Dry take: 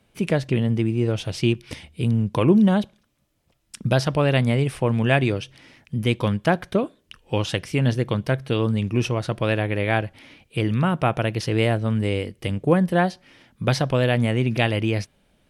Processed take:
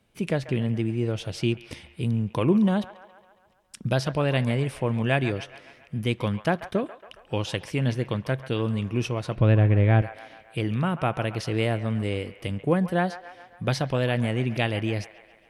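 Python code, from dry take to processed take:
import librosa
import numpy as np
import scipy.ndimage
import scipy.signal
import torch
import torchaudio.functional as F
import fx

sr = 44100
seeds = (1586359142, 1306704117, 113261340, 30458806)

p1 = fx.riaa(x, sr, side='playback', at=(9.36, 10.02))
p2 = p1 + fx.echo_wet_bandpass(p1, sr, ms=138, feedback_pct=59, hz=1300.0, wet_db=-12.0, dry=0)
y = p2 * 10.0 ** (-4.5 / 20.0)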